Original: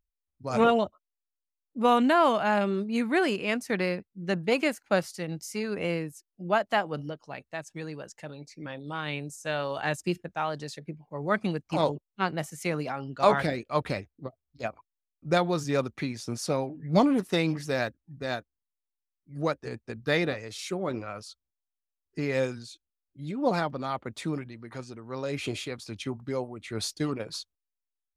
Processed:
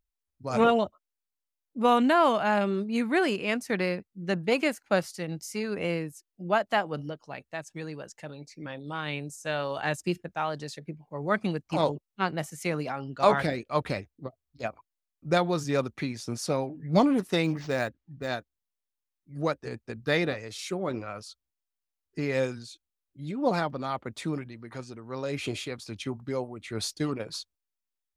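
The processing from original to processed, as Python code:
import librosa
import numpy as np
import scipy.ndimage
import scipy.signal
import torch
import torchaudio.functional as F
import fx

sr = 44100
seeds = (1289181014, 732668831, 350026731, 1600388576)

y = fx.resample_linear(x, sr, factor=4, at=(17.44, 18.28))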